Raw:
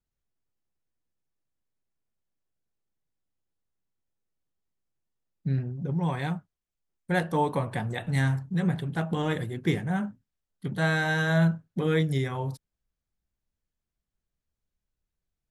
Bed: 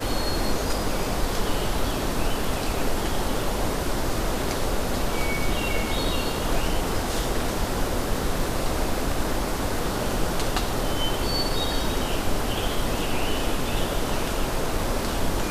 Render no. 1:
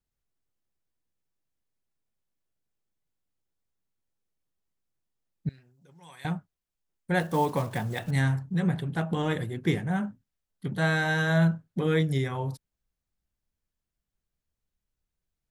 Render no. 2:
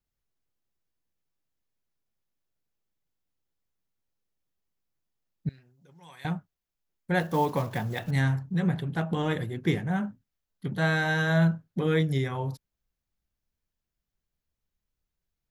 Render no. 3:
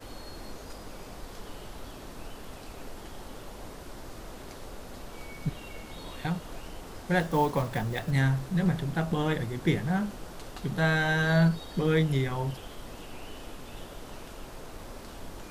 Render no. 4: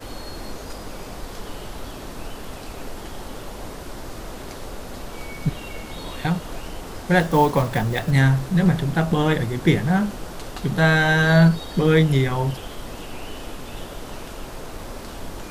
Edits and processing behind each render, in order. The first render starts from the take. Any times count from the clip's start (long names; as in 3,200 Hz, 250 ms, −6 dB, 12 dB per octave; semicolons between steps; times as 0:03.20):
0:05.49–0:06.25: first-order pre-emphasis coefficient 0.97; 0:07.20–0:08.12: one scale factor per block 5 bits
parametric band 8,700 Hz −9 dB 0.28 octaves
mix in bed −17.5 dB
level +8.5 dB